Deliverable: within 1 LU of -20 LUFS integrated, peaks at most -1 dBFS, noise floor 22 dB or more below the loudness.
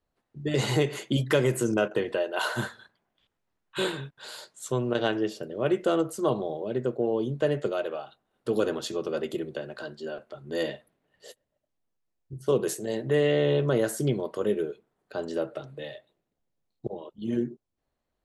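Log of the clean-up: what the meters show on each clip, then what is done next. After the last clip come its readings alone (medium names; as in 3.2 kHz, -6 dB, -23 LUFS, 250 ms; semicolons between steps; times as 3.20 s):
loudness -29.0 LUFS; peak level -10.5 dBFS; loudness target -20.0 LUFS
-> trim +9 dB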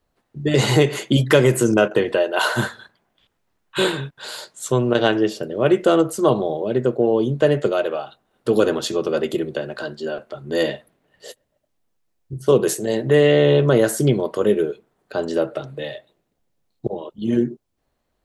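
loudness -20.0 LUFS; peak level -1.5 dBFS; noise floor -73 dBFS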